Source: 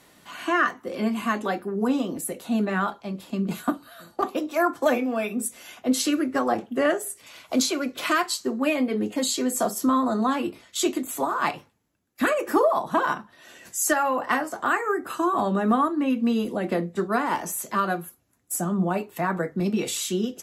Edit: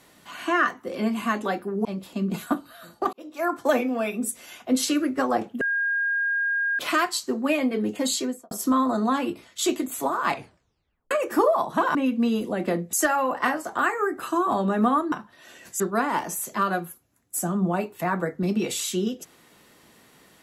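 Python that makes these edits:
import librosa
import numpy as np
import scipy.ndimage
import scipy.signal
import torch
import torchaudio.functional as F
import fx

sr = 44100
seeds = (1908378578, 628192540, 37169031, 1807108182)

y = fx.studio_fade_out(x, sr, start_s=9.32, length_s=0.36)
y = fx.edit(y, sr, fx.cut(start_s=1.85, length_s=1.17),
    fx.fade_in_span(start_s=4.3, length_s=0.5),
    fx.bleep(start_s=6.78, length_s=1.18, hz=1620.0, db=-21.5),
    fx.tape_stop(start_s=11.47, length_s=0.81),
    fx.swap(start_s=13.12, length_s=0.68, other_s=15.99, other_length_s=0.98), tone=tone)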